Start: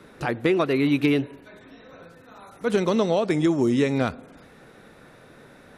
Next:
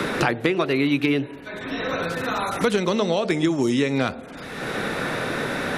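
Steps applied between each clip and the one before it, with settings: bell 3300 Hz +5 dB 2.5 oct; de-hum 75.1 Hz, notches 12; three-band squash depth 100%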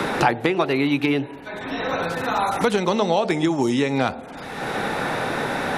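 bell 830 Hz +9.5 dB 0.46 oct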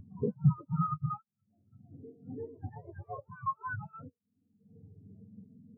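spectrum mirrored in octaves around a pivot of 600 Hz; reverse echo 0.335 s -3.5 dB; spectral expander 4:1; gain -8.5 dB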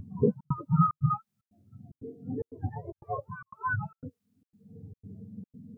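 step gate "xxxx.xxxx." 149 bpm -60 dB; gain +8 dB

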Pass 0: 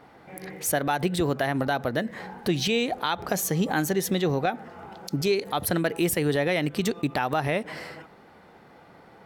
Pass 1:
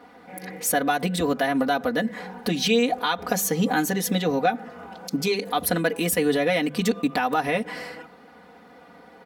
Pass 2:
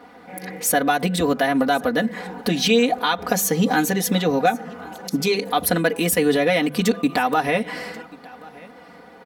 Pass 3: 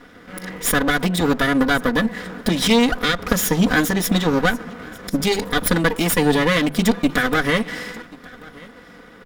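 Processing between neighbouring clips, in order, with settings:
HPF 67 Hz; notches 50/100/150/200 Hz; comb 4.1 ms, depth 96%
echo 1.085 s -22.5 dB; gain +3.5 dB
minimum comb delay 0.56 ms; gain +2.5 dB

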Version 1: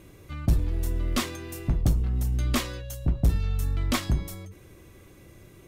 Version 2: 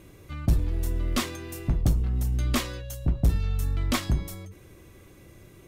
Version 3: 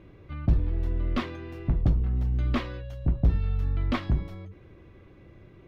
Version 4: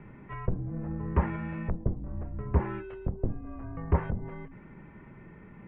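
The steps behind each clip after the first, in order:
nothing audible
air absorption 330 m
treble ducked by the level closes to 590 Hz, closed at -20.5 dBFS; mistuned SSB -170 Hz 200–2600 Hz; gain +6.5 dB

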